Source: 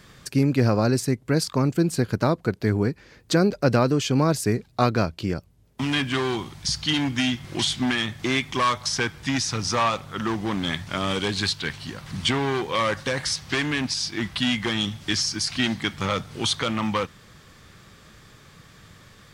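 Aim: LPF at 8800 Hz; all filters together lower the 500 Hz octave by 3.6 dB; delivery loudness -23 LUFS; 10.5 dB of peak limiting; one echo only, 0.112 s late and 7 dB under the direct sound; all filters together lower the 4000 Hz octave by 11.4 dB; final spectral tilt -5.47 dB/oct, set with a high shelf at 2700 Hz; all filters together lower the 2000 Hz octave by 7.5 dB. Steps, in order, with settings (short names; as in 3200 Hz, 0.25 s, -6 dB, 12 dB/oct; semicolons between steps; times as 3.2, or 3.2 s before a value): LPF 8800 Hz; bell 500 Hz -4 dB; bell 2000 Hz -4.5 dB; high shelf 2700 Hz -7.5 dB; bell 4000 Hz -7 dB; limiter -20 dBFS; echo 0.112 s -7 dB; gain +7 dB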